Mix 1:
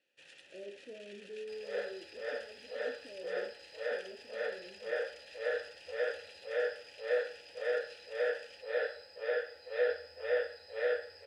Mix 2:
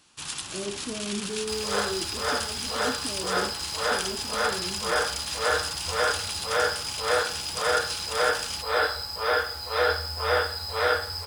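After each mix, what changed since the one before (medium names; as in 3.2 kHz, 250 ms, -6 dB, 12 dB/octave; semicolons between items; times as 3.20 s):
first sound +4.5 dB; master: remove vowel filter e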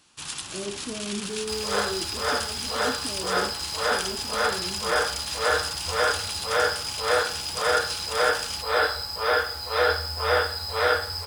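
reverb: on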